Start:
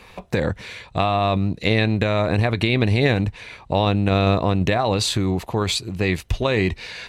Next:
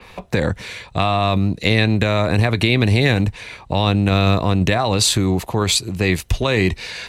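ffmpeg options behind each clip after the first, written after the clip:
-filter_complex "[0:a]acrossover=split=270|900[s0][s1][s2];[s1]alimiter=limit=0.112:level=0:latency=1[s3];[s0][s3][s2]amix=inputs=3:normalize=0,adynamicequalizer=threshold=0.0112:dfrequency=5400:dqfactor=0.7:tfrequency=5400:tqfactor=0.7:attack=5:release=100:ratio=0.375:range=3.5:mode=boostabove:tftype=highshelf,volume=1.5"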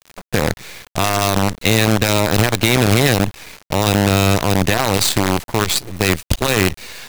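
-af "acrusher=bits=3:dc=4:mix=0:aa=0.000001"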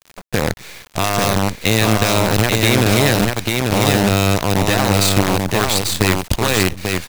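-af "aecho=1:1:842:0.668,volume=0.891"

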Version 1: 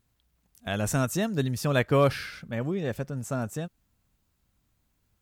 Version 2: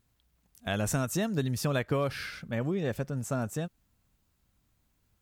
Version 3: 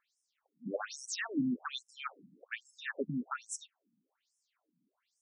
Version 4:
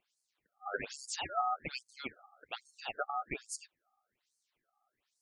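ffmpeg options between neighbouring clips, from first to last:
-af "acompressor=threshold=0.0631:ratio=10"
-af "afftfilt=real='re*between(b*sr/1024,210*pow(7400/210,0.5+0.5*sin(2*PI*1.2*pts/sr))/1.41,210*pow(7400/210,0.5+0.5*sin(2*PI*1.2*pts/sr))*1.41)':imag='im*between(b*sr/1024,210*pow(7400/210,0.5+0.5*sin(2*PI*1.2*pts/sr))/1.41,210*pow(7400/210,0.5+0.5*sin(2*PI*1.2*pts/sr))*1.41)':win_size=1024:overlap=0.75,volume=1.68"
-af "aeval=exprs='val(0)*sin(2*PI*1000*n/s)':c=same,volume=1.26"

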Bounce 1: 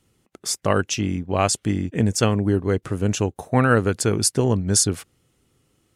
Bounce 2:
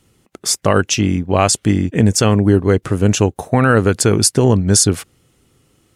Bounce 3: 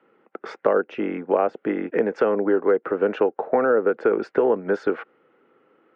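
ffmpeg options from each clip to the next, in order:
-af "alimiter=level_in=2.82:limit=0.891:release=50:level=0:latency=1,volume=0.891"
-filter_complex "[0:a]highpass=f=250:w=0.5412,highpass=f=250:w=1.3066,equalizer=f=270:t=q:w=4:g=-4,equalizer=f=480:t=q:w=4:g=6,equalizer=f=780:t=q:w=4:g=5,equalizer=f=1400:t=q:w=4:g=7,lowpass=f=2100:w=0.5412,lowpass=f=2100:w=1.3066,bandreject=f=730:w=12,acrossover=split=330|660[s0][s1][s2];[s0]acompressor=threshold=0.0224:ratio=4[s3];[s1]acompressor=threshold=0.126:ratio=4[s4];[s2]acompressor=threshold=0.0316:ratio=4[s5];[s3][s4][s5]amix=inputs=3:normalize=0"

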